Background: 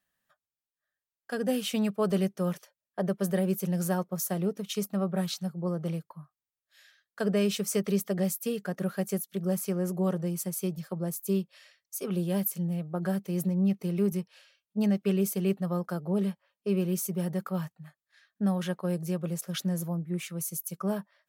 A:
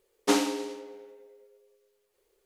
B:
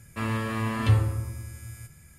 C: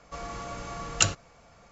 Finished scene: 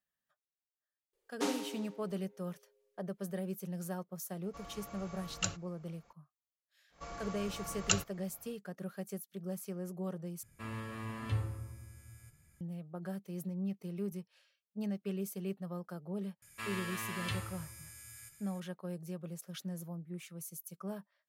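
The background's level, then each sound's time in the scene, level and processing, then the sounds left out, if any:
background -11.5 dB
1.13 s: add A -11 dB
4.42 s: add C -12.5 dB
6.89 s: add C -7.5 dB, fades 0.10 s
10.43 s: replace with B -13.5 dB
16.42 s: add B -11 dB + tilt shelf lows -9.5 dB

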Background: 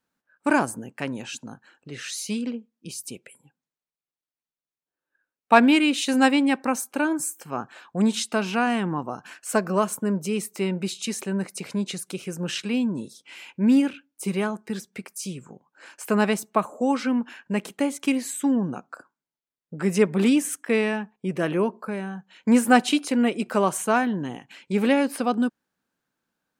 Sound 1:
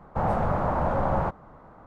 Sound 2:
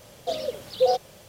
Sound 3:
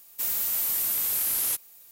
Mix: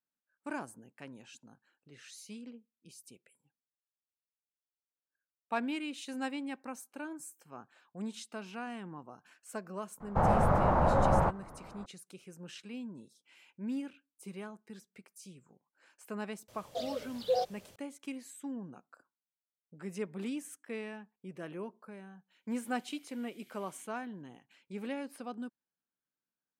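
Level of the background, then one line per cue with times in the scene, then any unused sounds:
background -18.5 dB
10.00 s: add 1 -1 dB
16.48 s: add 2 -9 dB
22.31 s: add 3 -11 dB + vowel filter i

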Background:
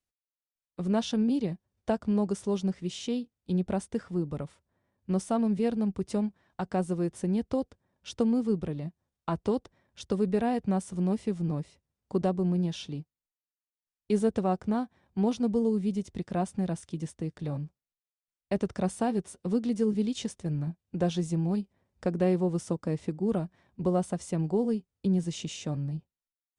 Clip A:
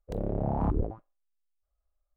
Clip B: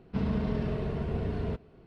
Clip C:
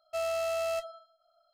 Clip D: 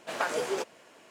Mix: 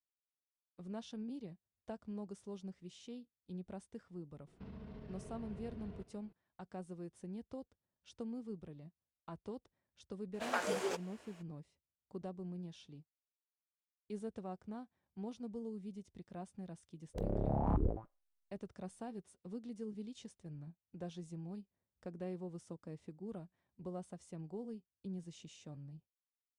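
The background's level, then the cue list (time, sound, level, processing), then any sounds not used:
background -18 dB
4.47 s: add B -12 dB + compression 5:1, threshold -35 dBFS
10.33 s: add D -6 dB, fades 0.02 s
17.06 s: add A -5 dB
not used: C

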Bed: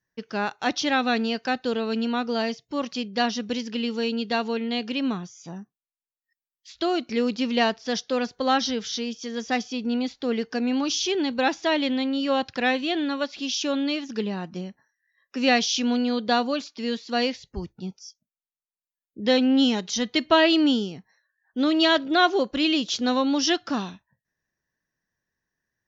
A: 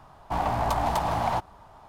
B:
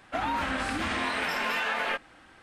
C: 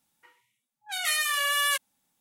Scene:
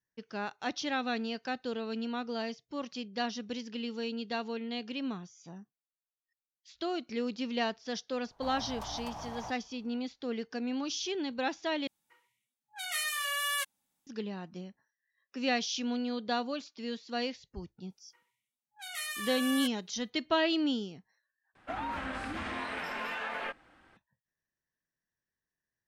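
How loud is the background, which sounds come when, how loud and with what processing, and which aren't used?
bed -10 dB
8.11 s: add A -16.5 dB
11.87 s: replace with C -7 dB
17.90 s: add C -11.5 dB
21.55 s: replace with B -6.5 dB + treble shelf 3.4 kHz -7.5 dB

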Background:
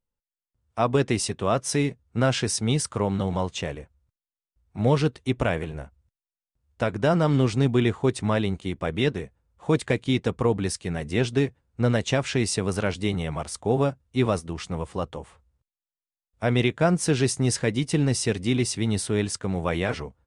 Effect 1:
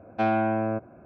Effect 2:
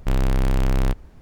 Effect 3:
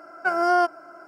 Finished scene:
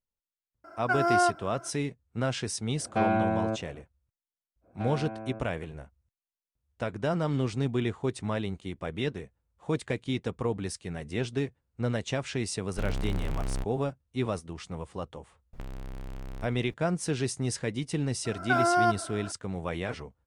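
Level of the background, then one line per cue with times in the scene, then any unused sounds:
background -7.5 dB
0.64 s: add 3 -4 dB
2.77 s: add 1 -2 dB
4.61 s: add 1 -14 dB, fades 0.05 s
12.71 s: add 2 -12 dB
15.53 s: add 2 -6 dB + compression 12:1, threshold -30 dBFS
18.25 s: add 3 -15.5 dB + loudness maximiser +17 dB

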